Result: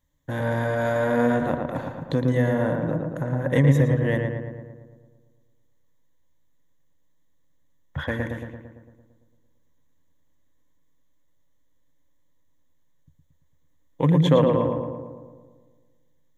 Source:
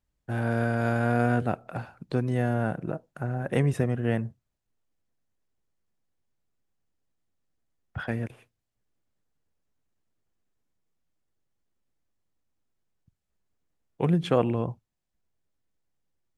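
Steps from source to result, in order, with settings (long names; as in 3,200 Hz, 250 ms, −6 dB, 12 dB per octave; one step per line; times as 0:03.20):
EQ curve with evenly spaced ripples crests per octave 1.1, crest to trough 12 dB
in parallel at −1.5 dB: downward compressor, threshold −33 dBFS, peak gain reduction 17 dB
on the sum: feedback echo with a low-pass in the loop 113 ms, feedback 63%, low-pass 2,300 Hz, level −3.5 dB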